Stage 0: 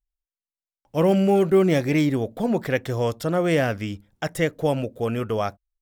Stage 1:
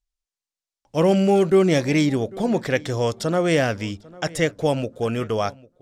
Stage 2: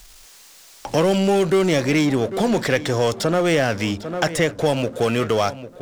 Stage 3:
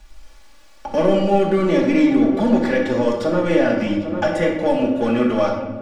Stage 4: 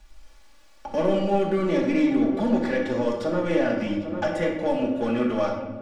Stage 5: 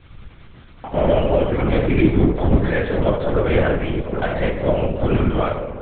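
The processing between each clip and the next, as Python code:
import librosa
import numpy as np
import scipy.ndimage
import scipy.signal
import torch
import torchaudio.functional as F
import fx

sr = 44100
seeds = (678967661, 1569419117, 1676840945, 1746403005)

y1 = scipy.signal.sosfilt(scipy.signal.butter(2, 6400.0, 'lowpass', fs=sr, output='sos'), x)
y1 = fx.bass_treble(y1, sr, bass_db=-1, treble_db=10)
y1 = fx.echo_filtered(y1, sr, ms=798, feedback_pct=21, hz=3100.0, wet_db=-22)
y1 = y1 * librosa.db_to_amplitude(1.5)
y2 = fx.low_shelf(y1, sr, hz=380.0, db=-5.5)
y2 = fx.power_curve(y2, sr, exponent=0.7)
y2 = fx.band_squash(y2, sr, depth_pct=70)
y3 = fx.lowpass(y2, sr, hz=1300.0, slope=6)
y3 = y3 + 0.94 * np.pad(y3, (int(3.5 * sr / 1000.0), 0))[:len(y3)]
y3 = fx.room_shoebox(y3, sr, seeds[0], volume_m3=520.0, walls='mixed', distance_m=1.4)
y3 = y3 * librosa.db_to_amplitude(-3.0)
y4 = fx.self_delay(y3, sr, depth_ms=0.052)
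y4 = y4 * librosa.db_to_amplitude(-6.0)
y5 = fx.doubler(y4, sr, ms=17.0, db=-4)
y5 = fx.lpc_vocoder(y5, sr, seeds[1], excitation='whisper', order=8)
y5 = y5 * librosa.db_to_amplitude(4.0)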